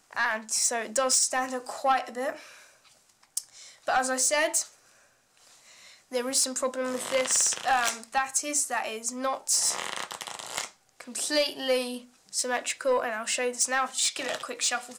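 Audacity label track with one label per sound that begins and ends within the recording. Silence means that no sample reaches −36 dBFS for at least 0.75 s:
3.370000	4.640000	sound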